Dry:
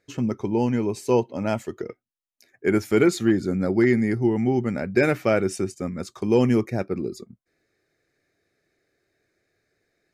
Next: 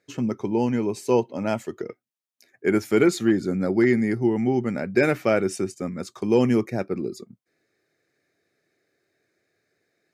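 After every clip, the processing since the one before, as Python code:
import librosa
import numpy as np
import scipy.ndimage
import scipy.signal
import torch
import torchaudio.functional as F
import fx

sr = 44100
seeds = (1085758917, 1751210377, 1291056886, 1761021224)

y = scipy.signal.sosfilt(scipy.signal.butter(2, 120.0, 'highpass', fs=sr, output='sos'), x)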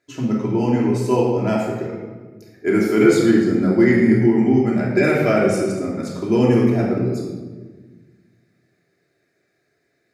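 y = fx.room_shoebox(x, sr, seeds[0], volume_m3=1100.0, walls='mixed', distance_m=3.0)
y = y * 10.0 ** (-1.5 / 20.0)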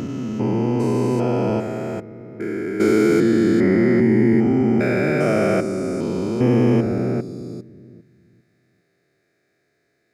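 y = fx.spec_steps(x, sr, hold_ms=400)
y = y * 10.0 ** (1.0 / 20.0)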